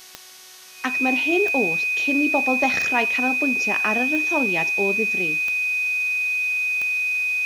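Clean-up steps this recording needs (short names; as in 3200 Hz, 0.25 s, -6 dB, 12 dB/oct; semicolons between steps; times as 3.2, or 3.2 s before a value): de-click; de-hum 370.9 Hz, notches 38; notch 2500 Hz, Q 30; denoiser 26 dB, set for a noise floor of -43 dBFS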